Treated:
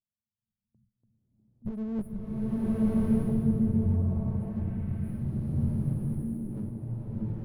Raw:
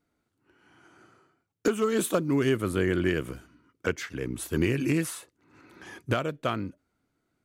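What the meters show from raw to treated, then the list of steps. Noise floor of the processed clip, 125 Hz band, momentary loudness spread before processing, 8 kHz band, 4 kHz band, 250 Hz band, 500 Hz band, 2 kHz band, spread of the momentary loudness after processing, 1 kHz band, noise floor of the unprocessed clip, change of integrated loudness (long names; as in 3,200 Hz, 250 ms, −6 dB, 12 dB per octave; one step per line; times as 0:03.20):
below −85 dBFS, +4.5 dB, 15 LU, below −20 dB, below −25 dB, +1.5 dB, −11.5 dB, below −20 dB, 10 LU, −14.0 dB, −79 dBFS, −2.0 dB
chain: lower of the sound and its delayed copy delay 9 ms
shaped tremolo triangle 0.62 Hz, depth 70%
brick-wall band-stop 230–9,000 Hz
in parallel at −2 dB: downward compressor, threshold −48 dBFS, peak gain reduction 18.5 dB
on the sum: tilt shelving filter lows +7 dB, about 910 Hz
noise gate with hold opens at −54 dBFS
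drawn EQ curve 100 Hz 0 dB, 820 Hz +9 dB, 13,000 Hz −15 dB
asymmetric clip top −29.5 dBFS
on a send: echo through a band-pass that steps 649 ms, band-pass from 290 Hz, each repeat 1.4 octaves, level 0 dB
on the sum: slow-attack reverb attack 1,200 ms, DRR −10.5 dB
level −7 dB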